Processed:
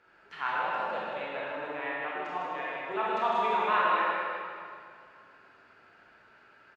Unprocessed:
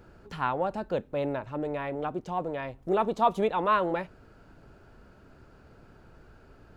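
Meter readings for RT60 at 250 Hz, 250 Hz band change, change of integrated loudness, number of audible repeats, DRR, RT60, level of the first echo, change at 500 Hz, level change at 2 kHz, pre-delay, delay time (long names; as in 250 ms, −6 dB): 2.4 s, −10.5 dB, −1.5 dB, 1, −7.0 dB, 2.2 s, −5.0 dB, −5.0 dB, +6.5 dB, 25 ms, 155 ms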